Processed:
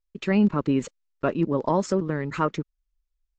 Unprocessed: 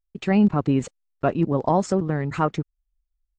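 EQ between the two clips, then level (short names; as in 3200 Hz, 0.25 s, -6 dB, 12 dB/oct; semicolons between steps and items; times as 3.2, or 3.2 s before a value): steep low-pass 7600 Hz 36 dB/oct; bell 94 Hz -10 dB 1.3 oct; bell 740 Hz -13 dB 0.21 oct; 0.0 dB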